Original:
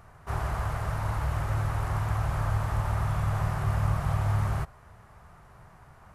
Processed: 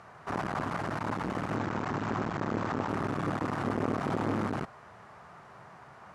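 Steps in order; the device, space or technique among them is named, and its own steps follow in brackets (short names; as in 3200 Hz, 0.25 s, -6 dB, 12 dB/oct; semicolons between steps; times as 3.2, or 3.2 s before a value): 1.56–2.89 steep low-pass 7800 Hz 72 dB/oct; public-address speaker with an overloaded transformer (core saturation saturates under 440 Hz; BPF 200–6100 Hz); gain +5 dB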